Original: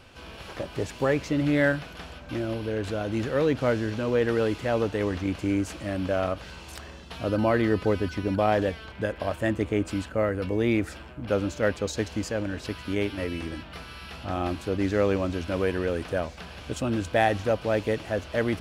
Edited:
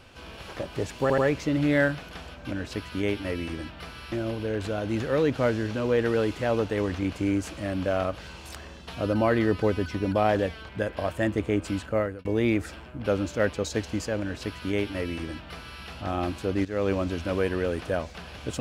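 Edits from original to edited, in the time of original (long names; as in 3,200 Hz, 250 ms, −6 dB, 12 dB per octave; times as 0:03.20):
0:01.02: stutter 0.08 s, 3 plays
0:10.21–0:10.48: fade out
0:12.44–0:14.05: duplicate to 0:02.35
0:14.88–0:15.15: fade in, from −15 dB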